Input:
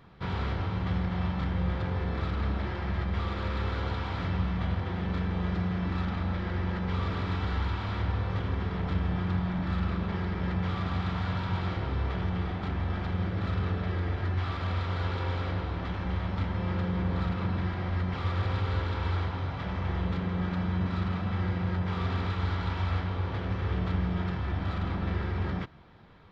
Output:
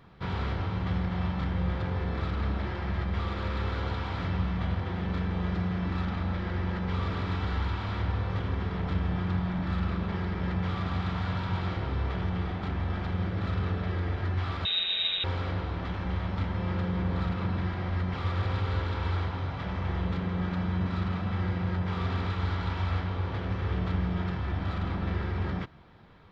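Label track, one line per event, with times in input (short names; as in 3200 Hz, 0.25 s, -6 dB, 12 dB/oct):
14.650000	15.240000	inverted band carrier 3800 Hz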